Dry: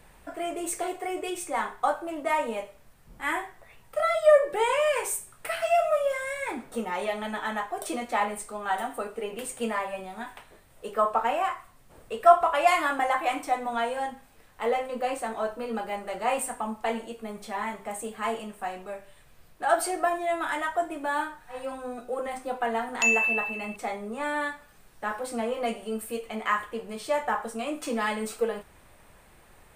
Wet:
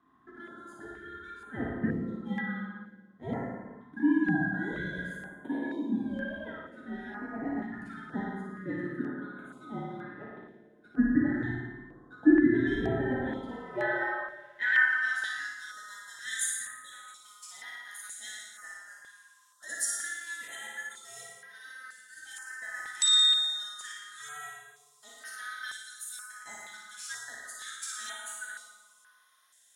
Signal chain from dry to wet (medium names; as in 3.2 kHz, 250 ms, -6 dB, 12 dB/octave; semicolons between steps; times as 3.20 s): split-band scrambler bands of 1 kHz; spectral selection erased 16.72–16.92 s, 570–3200 Hz; in parallel at -10.5 dB: crossover distortion -40.5 dBFS; on the sum: flutter echo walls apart 9.8 m, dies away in 0.81 s; band-pass sweep 270 Hz -> 7.4 kHz, 13.24–15.64 s; on a send at -2 dB: reverberation RT60 1.3 s, pre-delay 32 ms; on the sum: step-sequenced notch 2.1 Hz 540–7600 Hz; trim +4 dB